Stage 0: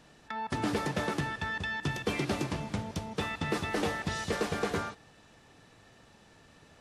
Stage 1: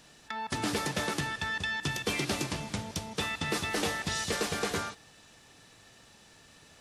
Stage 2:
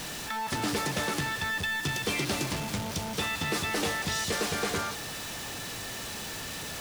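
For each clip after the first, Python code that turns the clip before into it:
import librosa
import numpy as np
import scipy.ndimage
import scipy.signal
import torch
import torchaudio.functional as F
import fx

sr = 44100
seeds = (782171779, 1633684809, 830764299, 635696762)

y1 = fx.high_shelf(x, sr, hz=2600.0, db=11.5)
y1 = F.gain(torch.from_numpy(y1), -2.0).numpy()
y2 = y1 + 0.5 * 10.0 ** (-31.0 / 20.0) * np.sign(y1)
y2 = F.gain(torch.from_numpy(y2), -1.5).numpy()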